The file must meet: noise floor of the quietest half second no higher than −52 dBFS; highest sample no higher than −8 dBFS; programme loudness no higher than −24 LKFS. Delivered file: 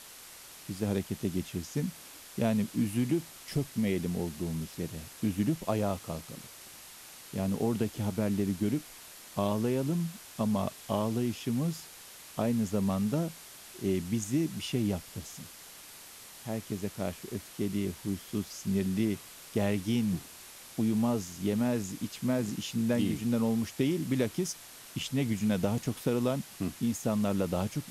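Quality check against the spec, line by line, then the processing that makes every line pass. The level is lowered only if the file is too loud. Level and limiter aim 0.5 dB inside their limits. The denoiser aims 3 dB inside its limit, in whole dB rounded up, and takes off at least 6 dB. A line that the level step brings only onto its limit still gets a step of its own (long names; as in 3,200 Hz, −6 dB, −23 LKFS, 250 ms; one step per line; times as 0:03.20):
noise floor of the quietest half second −50 dBFS: out of spec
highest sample −14.0 dBFS: in spec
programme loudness −32.0 LKFS: in spec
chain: broadband denoise 6 dB, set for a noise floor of −50 dBFS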